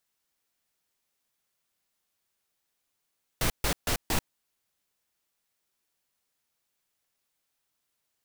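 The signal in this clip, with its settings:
noise bursts pink, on 0.09 s, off 0.14 s, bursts 4, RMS −26 dBFS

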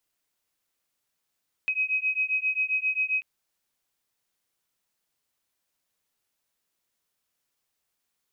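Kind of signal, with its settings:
two tones that beat 2,530 Hz, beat 7.5 Hz, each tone −27 dBFS 1.54 s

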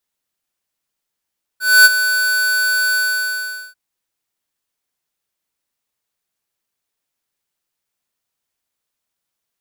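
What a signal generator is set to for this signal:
note with an ADSR envelope square 1,500 Hz, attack 253 ms, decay 30 ms, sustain −11 dB, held 1.35 s, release 792 ms −5.5 dBFS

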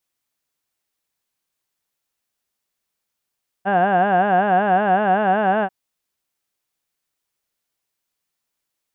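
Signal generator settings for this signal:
vowel from formants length 2.04 s, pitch 187 Hz, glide +1.5 semitones, vibrato depth 1.4 semitones, F1 730 Hz, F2 1,600 Hz, F3 2,800 Hz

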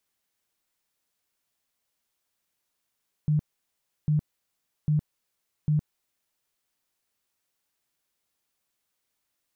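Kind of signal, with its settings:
tone bursts 151 Hz, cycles 17, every 0.80 s, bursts 4, −19.5 dBFS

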